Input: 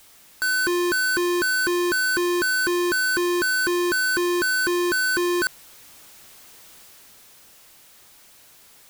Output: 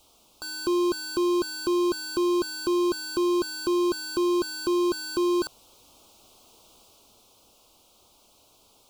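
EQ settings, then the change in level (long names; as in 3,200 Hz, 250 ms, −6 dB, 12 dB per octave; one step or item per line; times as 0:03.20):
Butterworth band-reject 1,800 Hz, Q 1
low-pass filter 2,800 Hz 6 dB per octave
parametric band 150 Hz −10 dB 0.42 octaves
0.0 dB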